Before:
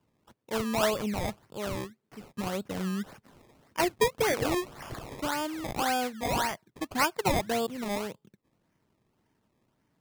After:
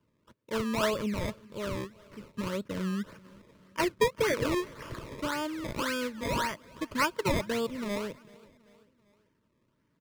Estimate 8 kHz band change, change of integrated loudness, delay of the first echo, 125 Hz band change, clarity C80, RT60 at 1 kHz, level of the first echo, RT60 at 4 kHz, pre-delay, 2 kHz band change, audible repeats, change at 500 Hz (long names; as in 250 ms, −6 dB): −4.5 dB, −1.5 dB, 388 ms, 0.0 dB, no reverb audible, no reverb audible, −23.5 dB, no reverb audible, no reverb audible, −0.5 dB, 3, −1.0 dB